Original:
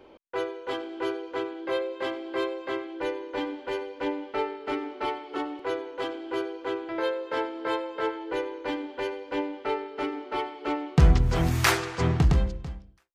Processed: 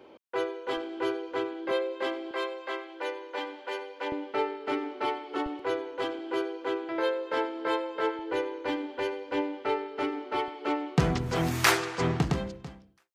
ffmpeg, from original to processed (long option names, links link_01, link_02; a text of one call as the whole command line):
ffmpeg -i in.wav -af "asetnsamples=nb_out_samples=441:pad=0,asendcmd='0.77 highpass f 53;1.71 highpass f 220;2.31 highpass f 540;4.12 highpass f 130;5.46 highpass f 51;6.19 highpass f 150;8.19 highpass f 63;10.48 highpass f 160',highpass=120" out.wav